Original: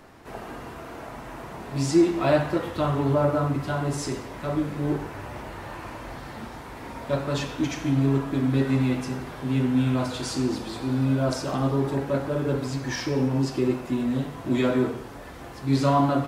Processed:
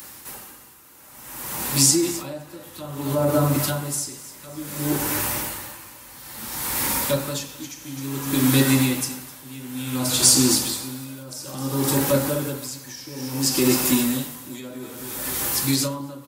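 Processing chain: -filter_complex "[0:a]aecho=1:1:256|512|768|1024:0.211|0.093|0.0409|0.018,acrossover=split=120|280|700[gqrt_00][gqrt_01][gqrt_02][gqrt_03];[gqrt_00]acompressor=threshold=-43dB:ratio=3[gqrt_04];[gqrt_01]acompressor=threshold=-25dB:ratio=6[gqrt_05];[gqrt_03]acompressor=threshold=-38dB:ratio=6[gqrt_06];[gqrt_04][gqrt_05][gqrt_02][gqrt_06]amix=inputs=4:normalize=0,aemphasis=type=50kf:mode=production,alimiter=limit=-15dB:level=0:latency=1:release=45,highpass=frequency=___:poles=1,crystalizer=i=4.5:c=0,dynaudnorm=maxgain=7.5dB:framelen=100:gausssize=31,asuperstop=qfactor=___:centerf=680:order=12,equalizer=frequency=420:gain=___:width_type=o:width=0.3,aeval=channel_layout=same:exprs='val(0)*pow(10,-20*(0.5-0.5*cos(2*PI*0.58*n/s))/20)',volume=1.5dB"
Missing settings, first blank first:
52, 7.2, -6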